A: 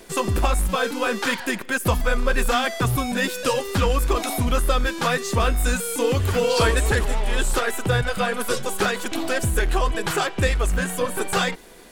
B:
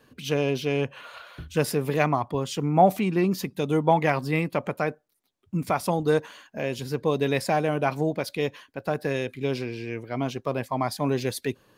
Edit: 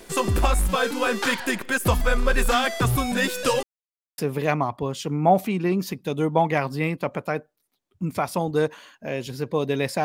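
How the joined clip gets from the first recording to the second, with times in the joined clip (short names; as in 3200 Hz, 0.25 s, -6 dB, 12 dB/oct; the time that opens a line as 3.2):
A
3.63–4.18 mute
4.18 switch to B from 1.7 s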